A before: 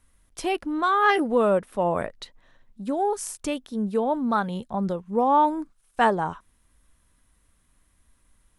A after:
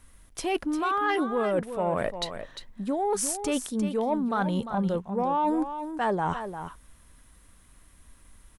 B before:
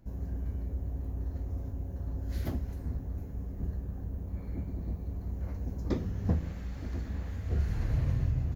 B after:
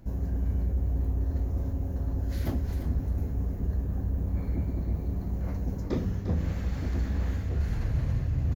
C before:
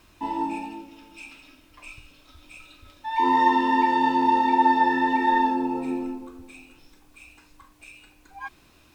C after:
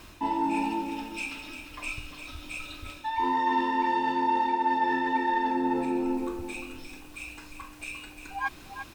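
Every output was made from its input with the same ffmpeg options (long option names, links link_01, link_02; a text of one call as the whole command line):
ffmpeg -i in.wav -af "areverse,acompressor=threshold=-32dB:ratio=6,areverse,asoftclip=type=tanh:threshold=-23dB,aecho=1:1:350:0.335,volume=8dB" out.wav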